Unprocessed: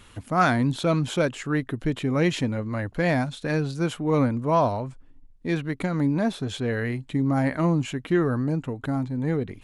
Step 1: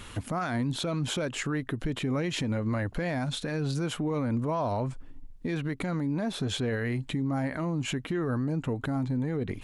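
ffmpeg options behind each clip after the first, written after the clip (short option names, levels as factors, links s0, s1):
-af "acompressor=threshold=0.0631:ratio=6,alimiter=level_in=1.68:limit=0.0631:level=0:latency=1:release=161,volume=0.596,volume=2.11"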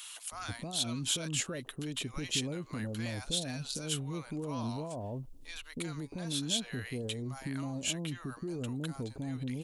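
-filter_complex "[0:a]aexciter=amount=2.8:drive=7.5:freq=2700,acrossover=split=780[s0][s1];[s0]adelay=320[s2];[s2][s1]amix=inputs=2:normalize=0,volume=0.398"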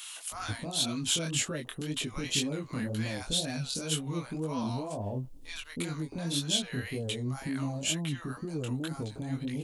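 -af "flanger=delay=18.5:depth=5.7:speed=2,volume=2.11"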